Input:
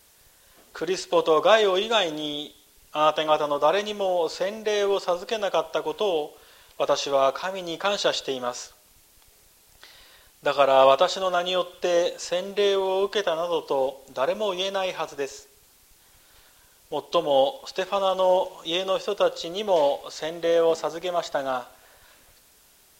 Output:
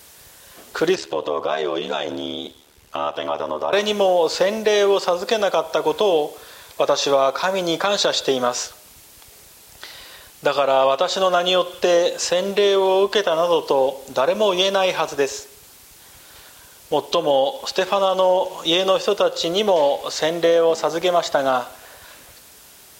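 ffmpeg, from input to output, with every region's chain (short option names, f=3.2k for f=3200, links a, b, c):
-filter_complex "[0:a]asettb=1/sr,asplit=3[a][b][c];[a]atrim=end=0.954[d];[b]atrim=start=0.95:end=3.73,asetpts=PTS-STARTPTS,afade=t=in:d=0.004:c=qsin,afade=t=out:st=2.776:d=0.004:c=qsin,highshelf=f=4.9k:g=-9,acompressor=threshold=-33dB:ratio=2.5:attack=3.2:release=140:knee=1:detection=peak,aeval=exprs='val(0)*sin(2*PI*37*n/s)':c=same[e];[c]atrim=start=3.726[f];[d][e]acrossfade=d=0.004:c1=hsin:c2=qsin[g];[g][f]acrossfade=d=0.004:c1=qsin:c2=hsin,asettb=1/sr,asplit=3[h][i][j];[h]atrim=end=5.184[k];[i]atrim=start=5.18:end=8.47,asetpts=PTS-STARTPTS,afade=t=in:d=0.004:c=qsin,afade=t=out:st=3.286:d=0.004:c=qsin,highpass=40,bandreject=f=2.9k:w=9.1[l];[j]atrim=start=8.466[m];[k][l]acrossfade=d=0.004:c1=hsin:c2=qsin[n];[n][m]acrossfade=d=0.004:c1=qsin:c2=hsin,highpass=55,acompressor=threshold=-24dB:ratio=6,alimiter=level_in=16.5dB:limit=-1dB:release=50:level=0:latency=1,volume=-5.5dB"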